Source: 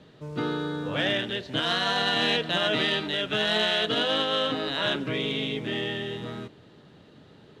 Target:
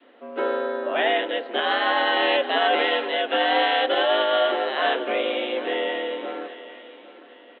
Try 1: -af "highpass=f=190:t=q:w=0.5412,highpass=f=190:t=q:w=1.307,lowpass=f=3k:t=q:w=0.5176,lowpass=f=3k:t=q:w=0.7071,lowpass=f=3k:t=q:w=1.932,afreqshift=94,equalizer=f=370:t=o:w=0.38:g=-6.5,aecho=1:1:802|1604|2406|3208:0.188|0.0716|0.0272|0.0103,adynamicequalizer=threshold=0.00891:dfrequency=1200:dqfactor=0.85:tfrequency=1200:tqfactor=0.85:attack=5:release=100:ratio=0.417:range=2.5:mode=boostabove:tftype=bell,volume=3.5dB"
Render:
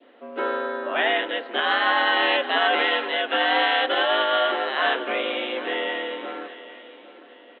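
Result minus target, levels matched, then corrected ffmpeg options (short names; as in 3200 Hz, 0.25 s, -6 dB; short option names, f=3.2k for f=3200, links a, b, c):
500 Hz band -3.0 dB
-af "highpass=f=190:t=q:w=0.5412,highpass=f=190:t=q:w=1.307,lowpass=f=3k:t=q:w=0.5176,lowpass=f=3k:t=q:w=0.7071,lowpass=f=3k:t=q:w=1.932,afreqshift=94,equalizer=f=370:t=o:w=0.38:g=-6.5,aecho=1:1:802|1604|2406|3208:0.188|0.0716|0.0272|0.0103,adynamicequalizer=threshold=0.00891:dfrequency=590:dqfactor=0.85:tfrequency=590:tqfactor=0.85:attack=5:release=100:ratio=0.417:range=2.5:mode=boostabove:tftype=bell,volume=3.5dB"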